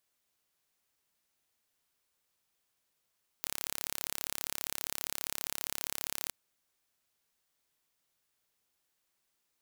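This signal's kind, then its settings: pulse train 35 per s, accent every 0, -8 dBFS 2.87 s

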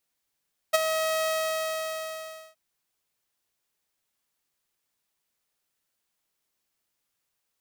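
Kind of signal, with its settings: ADSR saw 637 Hz, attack 16 ms, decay 24 ms, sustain -9 dB, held 0.52 s, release 1300 ms -13 dBFS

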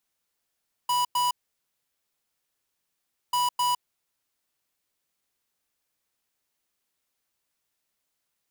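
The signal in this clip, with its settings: beep pattern square 983 Hz, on 0.16 s, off 0.10 s, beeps 2, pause 2.02 s, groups 2, -24 dBFS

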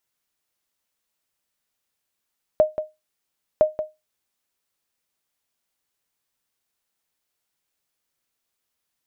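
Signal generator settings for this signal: sonar ping 618 Hz, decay 0.21 s, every 1.01 s, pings 2, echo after 0.18 s, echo -10.5 dB -7.5 dBFS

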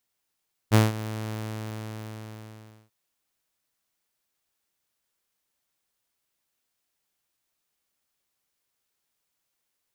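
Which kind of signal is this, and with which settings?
ADSR saw 109 Hz, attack 37 ms, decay 171 ms, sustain -17 dB, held 0.58 s, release 1610 ms -11 dBFS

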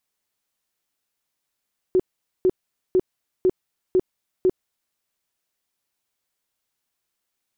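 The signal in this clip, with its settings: tone bursts 370 Hz, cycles 17, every 0.50 s, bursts 6, -13.5 dBFS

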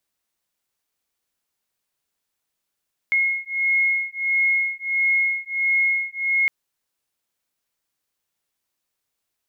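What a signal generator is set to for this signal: beating tones 2.16 kHz, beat 1.5 Hz, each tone -21.5 dBFS 3.36 s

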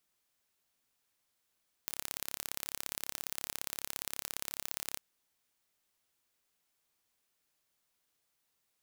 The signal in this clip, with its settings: pulse train 34.6 per s, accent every 2, -8.5 dBFS 3.12 s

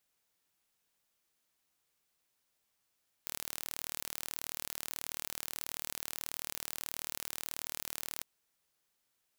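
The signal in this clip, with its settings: pulse train 38.4 per s, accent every 0, -11.5 dBFS 4.95 s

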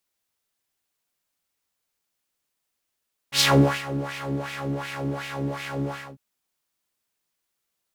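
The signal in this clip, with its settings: synth patch with filter wobble C#3, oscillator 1 triangle, interval +12 st, noise -9.5 dB, filter bandpass, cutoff 500 Hz, Q 2.3, filter envelope 2 oct, attack 78 ms, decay 0.43 s, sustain -16 dB, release 0.26 s, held 2.59 s, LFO 2.7 Hz, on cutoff 1.5 oct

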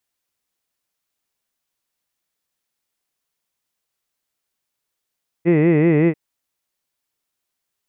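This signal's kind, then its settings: formant-synthesis vowel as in hid, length 0.69 s, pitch 162 Hz, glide -0.5 st, vibrato depth 1.35 st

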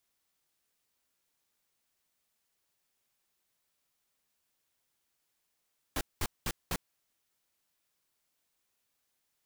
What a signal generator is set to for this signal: noise bursts pink, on 0.05 s, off 0.20 s, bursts 4, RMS -32 dBFS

